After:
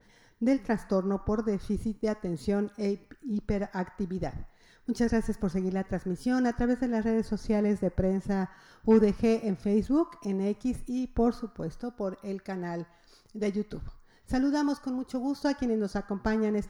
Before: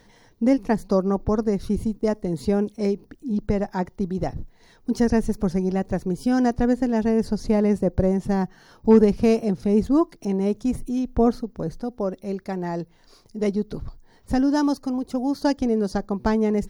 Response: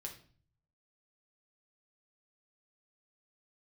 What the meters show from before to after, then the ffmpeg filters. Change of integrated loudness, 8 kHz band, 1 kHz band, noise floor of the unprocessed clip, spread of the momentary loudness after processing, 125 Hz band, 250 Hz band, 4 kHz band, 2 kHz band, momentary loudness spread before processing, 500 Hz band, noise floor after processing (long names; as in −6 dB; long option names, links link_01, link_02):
−6.5 dB, can't be measured, −7.5 dB, −55 dBFS, 10 LU, −6.5 dB, −6.5 dB, −6.0 dB, −3.0 dB, 10 LU, −7.0 dB, −60 dBFS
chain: -filter_complex "[0:a]asplit=2[link_01][link_02];[link_02]highpass=frequency=1300:width_type=q:width=3.1[link_03];[1:a]atrim=start_sample=2205,asetrate=22050,aresample=44100[link_04];[link_03][link_04]afir=irnorm=-1:irlink=0,volume=-10dB[link_05];[link_01][link_05]amix=inputs=2:normalize=0,adynamicequalizer=threshold=0.00891:dfrequency=2400:dqfactor=0.7:tfrequency=2400:tqfactor=0.7:attack=5:release=100:ratio=0.375:range=2:mode=cutabove:tftype=highshelf,volume=-6.5dB"